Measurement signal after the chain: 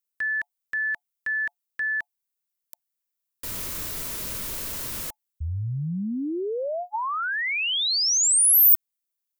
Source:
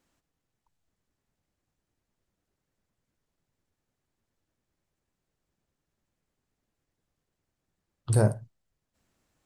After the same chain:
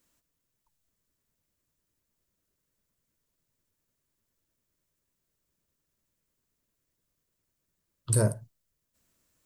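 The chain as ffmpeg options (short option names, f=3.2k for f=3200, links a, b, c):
-af "asuperstop=centerf=780:order=20:qfactor=5.7,aemphasis=mode=production:type=50kf,volume=-2.5dB"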